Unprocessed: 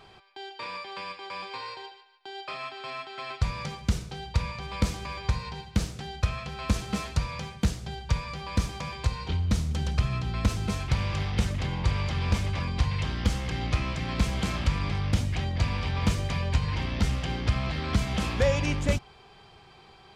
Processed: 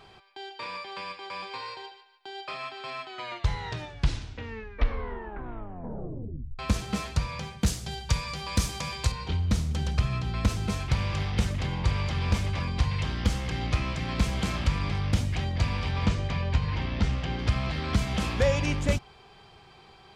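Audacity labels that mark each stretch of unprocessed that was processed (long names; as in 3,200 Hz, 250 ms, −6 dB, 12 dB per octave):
3.000000	3.000000	tape stop 3.59 s
7.660000	9.120000	high-shelf EQ 4,200 Hz +11.5 dB
16.060000	17.390000	high-frequency loss of the air 94 metres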